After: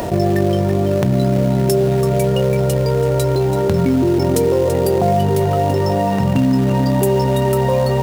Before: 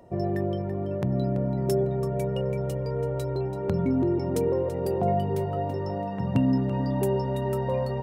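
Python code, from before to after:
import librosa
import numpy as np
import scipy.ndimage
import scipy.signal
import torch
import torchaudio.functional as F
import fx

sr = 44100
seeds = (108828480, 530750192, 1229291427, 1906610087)

p1 = fx.high_shelf(x, sr, hz=3800.0, db=6.5)
p2 = fx.hum_notches(p1, sr, base_hz=60, count=9)
p3 = fx.quant_companded(p2, sr, bits=4)
p4 = p2 + F.gain(torch.from_numpy(p3), -6.5).numpy()
p5 = fx.env_flatten(p4, sr, amount_pct=70)
y = F.gain(torch.from_numpy(p5), 3.5).numpy()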